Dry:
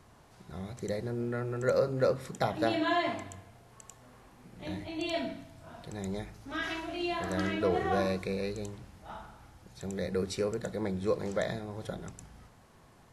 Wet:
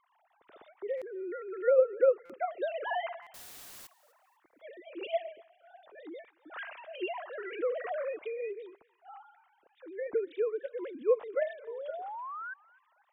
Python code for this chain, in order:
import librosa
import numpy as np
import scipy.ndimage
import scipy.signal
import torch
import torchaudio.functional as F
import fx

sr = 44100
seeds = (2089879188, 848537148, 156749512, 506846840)

p1 = fx.sine_speech(x, sr)
p2 = fx.quant_dither(p1, sr, seeds[0], bits=8, dither='triangular', at=(3.34, 3.87))
p3 = fx.spec_paint(p2, sr, seeds[1], shape='rise', start_s=11.67, length_s=0.87, low_hz=440.0, high_hz=1600.0, level_db=-39.0)
p4 = p3 + fx.echo_thinned(p3, sr, ms=249, feedback_pct=32, hz=1100.0, wet_db=-21, dry=0)
p5 = fx.buffer_glitch(p4, sr, at_s=(0.97, 2.25, 3.22), block=256, repeats=7)
y = p5 * librosa.db_to_amplitude(-1.0)